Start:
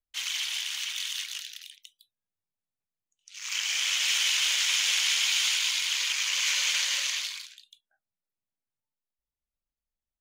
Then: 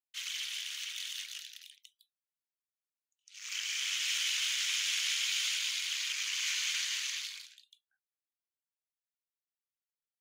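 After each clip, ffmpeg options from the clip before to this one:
ffmpeg -i in.wav -af "highpass=frequency=1200:width=0.5412,highpass=frequency=1200:width=1.3066,volume=-7dB" out.wav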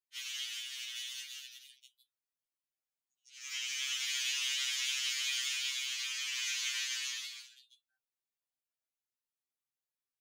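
ffmpeg -i in.wav -af "afftfilt=real='re*2.45*eq(mod(b,6),0)':imag='im*2.45*eq(mod(b,6),0)':win_size=2048:overlap=0.75" out.wav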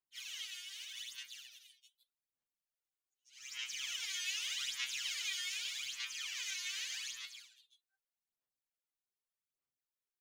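ffmpeg -i in.wav -af "aphaser=in_gain=1:out_gain=1:delay=2.8:decay=0.71:speed=0.83:type=sinusoidal,volume=-8dB" out.wav

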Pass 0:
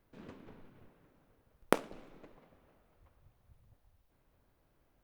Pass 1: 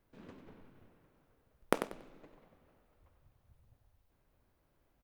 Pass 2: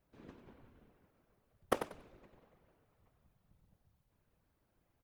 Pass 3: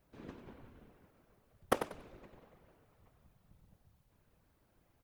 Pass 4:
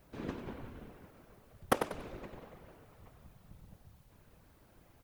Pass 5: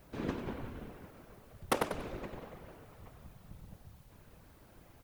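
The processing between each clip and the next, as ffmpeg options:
ffmpeg -i in.wav -af "aecho=1:1:94|188|282:0.376|0.0827|0.0182,volume=-2.5dB" out.wav
ffmpeg -i in.wav -af "afftfilt=real='hypot(re,im)*cos(2*PI*random(0))':imag='hypot(re,im)*sin(2*PI*random(1))':win_size=512:overlap=0.75,volume=3dB" out.wav
ffmpeg -i in.wav -af "alimiter=limit=-17.5dB:level=0:latency=1:release=408,volume=5.5dB" out.wav
ffmpeg -i in.wav -af "alimiter=limit=-21.5dB:level=0:latency=1:release=319,volume=9.5dB" out.wav
ffmpeg -i in.wav -af "volume=26dB,asoftclip=hard,volume=-26dB,volume=4dB" out.wav

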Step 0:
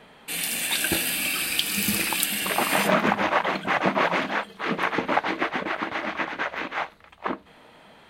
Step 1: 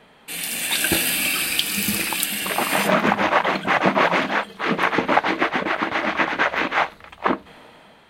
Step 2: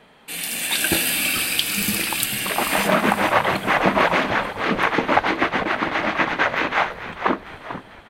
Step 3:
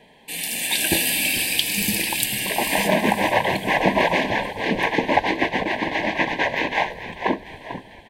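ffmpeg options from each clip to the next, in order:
ffmpeg -i in.wav -af "dynaudnorm=framelen=210:gausssize=7:maxgain=11.5dB,volume=-1dB" out.wav
ffmpeg -i in.wav -filter_complex "[0:a]asplit=6[link_01][link_02][link_03][link_04][link_05][link_06];[link_02]adelay=444,afreqshift=-79,volume=-12dB[link_07];[link_03]adelay=888,afreqshift=-158,volume=-18dB[link_08];[link_04]adelay=1332,afreqshift=-237,volume=-24dB[link_09];[link_05]adelay=1776,afreqshift=-316,volume=-30.1dB[link_10];[link_06]adelay=2220,afreqshift=-395,volume=-36.1dB[link_11];[link_01][link_07][link_08][link_09][link_10][link_11]amix=inputs=6:normalize=0" out.wav
ffmpeg -i in.wav -af "asuperstop=centerf=1300:order=8:qfactor=2.2" out.wav

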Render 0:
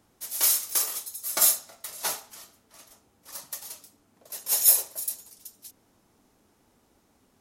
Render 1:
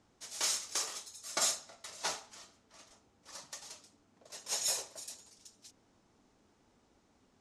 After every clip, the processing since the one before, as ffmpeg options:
ffmpeg -i in.wav -af "lowpass=frequency=7600:width=0.5412,lowpass=frequency=7600:width=1.3066,volume=-4dB" out.wav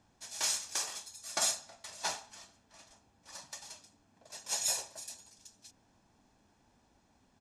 ffmpeg -i in.wav -af "aecho=1:1:1.2:0.41" out.wav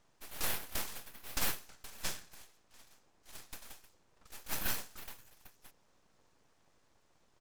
ffmpeg -i in.wav -af "aeval=exprs='abs(val(0))':channel_layout=same" out.wav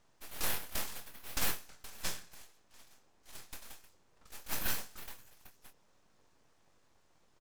ffmpeg -i in.wav -filter_complex "[0:a]asplit=2[link_01][link_02];[link_02]adelay=23,volume=-9.5dB[link_03];[link_01][link_03]amix=inputs=2:normalize=0" out.wav

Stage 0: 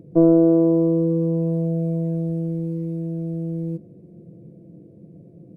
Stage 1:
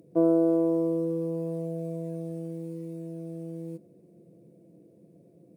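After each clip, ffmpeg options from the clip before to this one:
ffmpeg -i in.wav -af "highpass=frequency=570:poles=1,aemphasis=mode=production:type=cd,volume=-2dB" out.wav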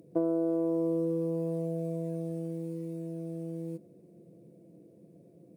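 ffmpeg -i in.wav -af "acompressor=threshold=-25dB:ratio=6" out.wav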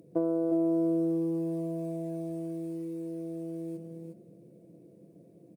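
ffmpeg -i in.wav -af "aecho=1:1:360:0.501" out.wav

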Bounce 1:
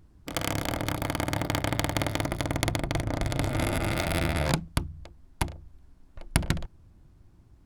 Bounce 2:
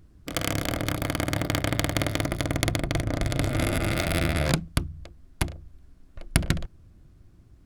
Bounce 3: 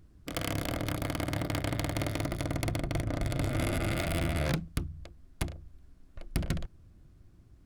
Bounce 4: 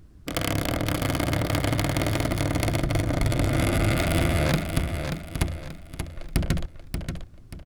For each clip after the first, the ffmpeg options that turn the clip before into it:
ffmpeg -i in.wav -af "equalizer=frequency=890:width=4:gain=-8.5,volume=2.5dB" out.wav
ffmpeg -i in.wav -af "asoftclip=type=tanh:threshold=-17dB,volume=-3.5dB" out.wav
ffmpeg -i in.wav -af "aecho=1:1:583|1166|1749|2332:0.447|0.156|0.0547|0.0192,volume=7dB" out.wav

